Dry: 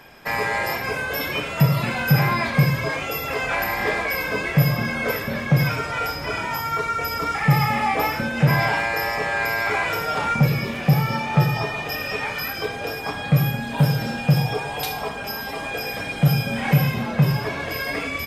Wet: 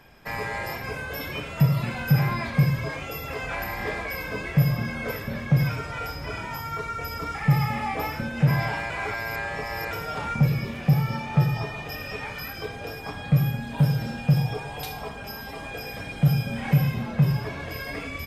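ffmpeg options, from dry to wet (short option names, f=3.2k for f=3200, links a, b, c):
-filter_complex "[0:a]asplit=3[a][b][c];[a]atrim=end=8.902[d];[b]atrim=start=8.898:end=9.912,asetpts=PTS-STARTPTS,areverse[e];[c]atrim=start=9.908[f];[d][e]acrossfade=d=0.004:c1=hsin:c2=hsin[g];[g][f]acrossfade=d=0.004:c1=hsin:c2=hsin,lowshelf=f=150:g=11,volume=-8dB"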